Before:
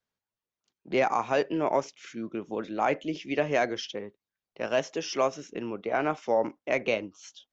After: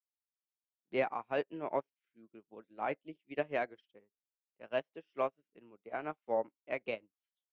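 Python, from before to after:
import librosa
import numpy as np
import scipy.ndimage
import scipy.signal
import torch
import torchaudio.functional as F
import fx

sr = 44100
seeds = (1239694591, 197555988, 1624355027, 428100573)

y = scipy.signal.sosfilt(scipy.signal.butter(4, 3400.0, 'lowpass', fs=sr, output='sos'), x)
y = fx.upward_expand(y, sr, threshold_db=-45.0, expansion=2.5)
y = F.gain(torch.from_numpy(y), -5.5).numpy()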